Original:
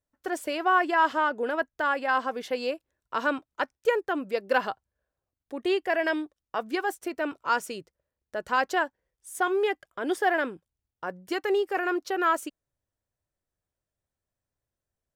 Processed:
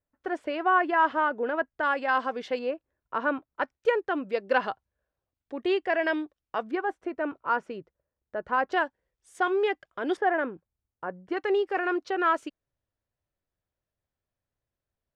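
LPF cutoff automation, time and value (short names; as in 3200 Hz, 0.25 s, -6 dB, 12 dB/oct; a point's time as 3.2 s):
2400 Hz
from 1.83 s 4600 Hz
from 2.59 s 1900 Hz
from 3.62 s 3900 Hz
from 6.71 s 1700 Hz
from 8.72 s 4500 Hz
from 10.17 s 1700 Hz
from 11.37 s 3800 Hz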